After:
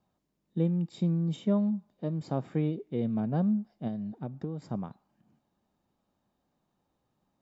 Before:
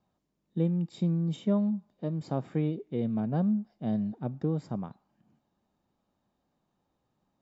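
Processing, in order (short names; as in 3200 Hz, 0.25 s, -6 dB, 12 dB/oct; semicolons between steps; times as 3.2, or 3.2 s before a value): 3.87–4.62 compressor 6:1, threshold -32 dBFS, peak gain reduction 8 dB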